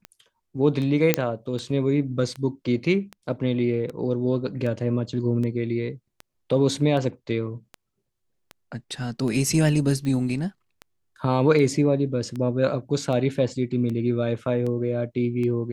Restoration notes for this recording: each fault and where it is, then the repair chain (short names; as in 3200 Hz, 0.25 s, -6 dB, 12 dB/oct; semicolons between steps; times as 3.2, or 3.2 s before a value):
tick 78 rpm -21 dBFS
1.14 pop -2 dBFS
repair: de-click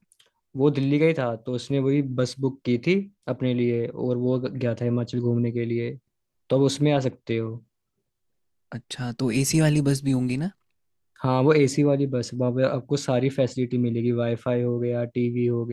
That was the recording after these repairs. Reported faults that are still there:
none